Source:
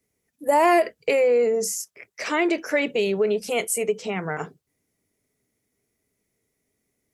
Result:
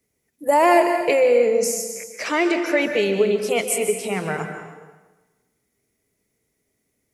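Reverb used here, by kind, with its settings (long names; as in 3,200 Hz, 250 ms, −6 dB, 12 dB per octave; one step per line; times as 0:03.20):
dense smooth reverb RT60 1.2 s, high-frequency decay 0.9×, pre-delay 120 ms, DRR 6 dB
level +2 dB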